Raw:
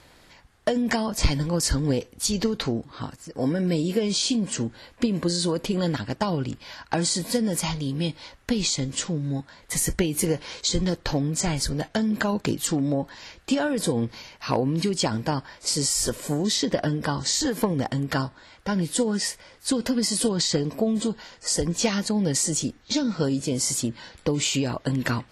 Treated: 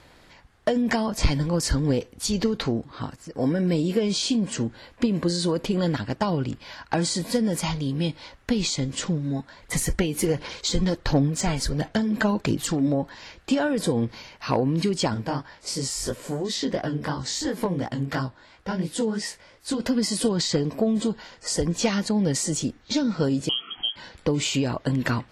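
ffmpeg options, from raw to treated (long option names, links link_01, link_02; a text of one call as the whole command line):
ffmpeg -i in.wav -filter_complex "[0:a]asettb=1/sr,asplit=3[link_01][link_02][link_03];[link_01]atrim=end=9.034[link_04];[link_02]atrim=start=9.03:end=12.88,asetpts=PTS-STARTPTS,afade=type=in:duration=0.004:curve=qsin,afade=type=out:start_time=3.846:duration=0.004:curve=qsin,aphaser=in_gain=1:out_gain=1:delay=4.6:decay=0.39:speed=1.4:type=sinusoidal[link_05];[link_03]atrim=start=12.876[link_06];[link_04][link_05]acrossfade=duration=0.004:curve1=hsin:curve2=qsin[link_07];[link_07][link_06]acrossfade=duration=0.004:curve1=qsin:curve2=hsin,asettb=1/sr,asplit=3[link_08][link_09][link_10];[link_08]atrim=end=15.144[link_11];[link_09]atrim=start=15.14:end=19.8,asetpts=PTS-STARTPTS,afade=type=in:duration=0.004:curve=qsin,afade=type=out:start_time=4.656:duration=0.004:curve=qsin,flanger=delay=15.5:depth=7.4:speed=2.9[link_12];[link_10]atrim=start=19.796[link_13];[link_11][link_12]acrossfade=duration=0.004:curve1=hsin:curve2=qsin[link_14];[link_14][link_13]acrossfade=duration=0.004:curve1=qsin:curve2=hsin,asettb=1/sr,asplit=3[link_15][link_16][link_17];[link_15]atrim=end=23.494[link_18];[link_16]atrim=start=23.49:end=23.96,asetpts=PTS-STARTPTS,afade=type=in:duration=0.004:curve=qsin,afade=type=out:start_time=0.466:duration=0.004:curve=qsin,lowpass=frequency=2900:width_type=q:width=0.5098,lowpass=frequency=2900:width_type=q:width=0.6013,lowpass=frequency=2900:width_type=q:width=0.9,lowpass=frequency=2900:width_type=q:width=2.563,afreqshift=-3400[link_19];[link_17]atrim=start=23.956[link_20];[link_18][link_19]acrossfade=duration=0.004:curve1=hsin:curve2=qsin[link_21];[link_21][link_20]acrossfade=duration=0.004:curve1=qsin:curve2=hsin,acontrast=75,highshelf=frequency=5500:gain=-7,volume=-5.5dB" out.wav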